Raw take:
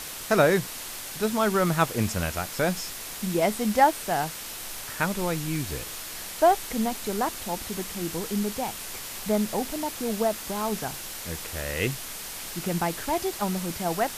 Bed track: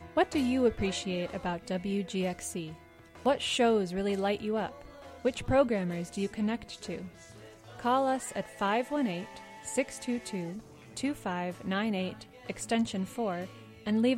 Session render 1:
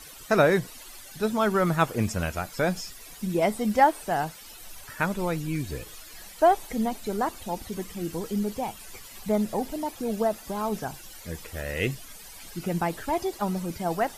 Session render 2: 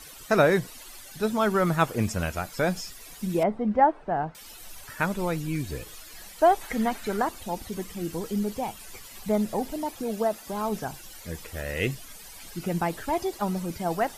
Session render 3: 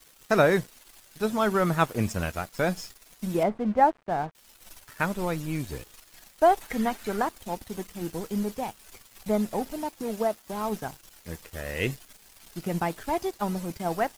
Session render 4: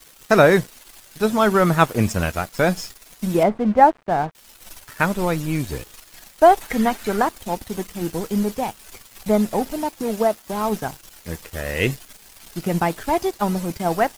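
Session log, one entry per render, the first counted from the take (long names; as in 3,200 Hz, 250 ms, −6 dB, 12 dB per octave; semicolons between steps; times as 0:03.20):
broadband denoise 14 dB, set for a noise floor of −38 dBFS
0:03.43–0:04.35: low-pass filter 1,300 Hz; 0:06.61–0:07.22: parametric band 1,600 Hz +11 dB 1.3 octaves; 0:10.03–0:10.53: low-shelf EQ 120 Hz −9.5 dB
dead-zone distortion −43.5 dBFS
level +7.5 dB; brickwall limiter −1 dBFS, peak gain reduction 1 dB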